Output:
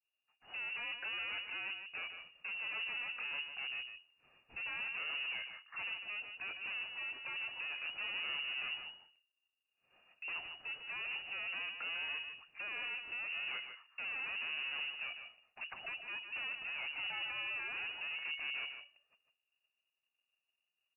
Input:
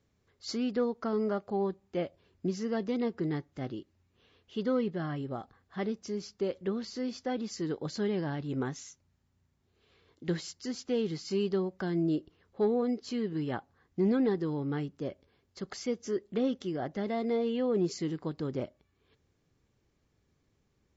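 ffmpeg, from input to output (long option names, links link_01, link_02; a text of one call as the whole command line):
ffmpeg -i in.wav -filter_complex "[0:a]agate=range=-33dB:threshold=-58dB:ratio=3:detection=peak,aeval=exprs='(tanh(178*val(0)+0.25)-tanh(0.25))/178':channel_layout=same,asplit=2[link_01][link_02];[link_02]alimiter=level_in=28dB:limit=-24dB:level=0:latency=1,volume=-28dB,volume=-2dB[link_03];[link_01][link_03]amix=inputs=2:normalize=0,equalizer=frequency=590:width=0.58:gain=-5,asettb=1/sr,asplit=3[link_04][link_05][link_06];[link_04]atrim=end=18.144[link_07];[link_05]atrim=start=18.14:end=18.64,asetpts=PTS-STARTPTS,afade=type=in:duration=0.004:curve=qsin,afade=type=out:start_time=0.496:duration=0.004:curve=qsin,aeval=exprs='val(0)+0.00224*sin(2*PI*690*n/s)':channel_layout=same[link_08];[link_06]atrim=start=18.636[link_09];[link_07][link_08]acrossfade=duration=0.004:curve1=hsin:curve2=qsin[link_10];[link_10][link_09]acrossfade=duration=0.004:curve1=qsin:curve2=hsin,asplit=2[link_11][link_12];[link_12]aecho=0:1:151:0.398[link_13];[link_11][link_13]amix=inputs=2:normalize=0,lowpass=frequency=2500:width_type=q:width=0.5098,lowpass=frequency=2500:width_type=q:width=0.6013,lowpass=frequency=2500:width_type=q:width=0.9,lowpass=frequency=2500:width_type=q:width=2.563,afreqshift=-2900,volume=4.5dB" out.wav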